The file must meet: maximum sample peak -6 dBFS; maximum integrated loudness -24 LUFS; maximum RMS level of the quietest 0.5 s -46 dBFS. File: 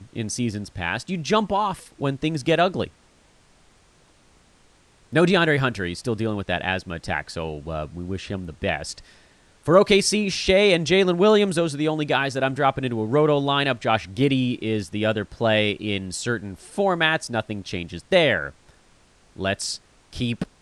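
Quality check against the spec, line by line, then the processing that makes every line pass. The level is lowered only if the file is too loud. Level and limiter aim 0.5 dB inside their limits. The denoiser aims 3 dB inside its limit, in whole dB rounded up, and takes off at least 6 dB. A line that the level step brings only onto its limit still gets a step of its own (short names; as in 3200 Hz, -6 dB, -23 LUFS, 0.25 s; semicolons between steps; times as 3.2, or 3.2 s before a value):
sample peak -4.5 dBFS: fail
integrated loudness -22.5 LUFS: fail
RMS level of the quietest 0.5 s -57 dBFS: OK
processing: gain -2 dB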